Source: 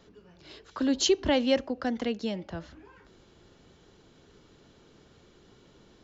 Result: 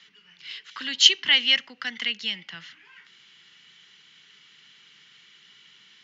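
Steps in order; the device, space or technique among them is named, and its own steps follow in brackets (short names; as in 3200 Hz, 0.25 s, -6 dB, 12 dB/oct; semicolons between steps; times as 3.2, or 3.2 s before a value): television speaker (speaker cabinet 170–6800 Hz, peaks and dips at 310 Hz -4 dB, 610 Hz -6 dB, 2000 Hz +9 dB, 3000 Hz +10 dB); EQ curve 150 Hz 0 dB, 250 Hz -10 dB, 580 Hz -12 dB, 1300 Hz +5 dB, 2100 Hz +11 dB; gain -4 dB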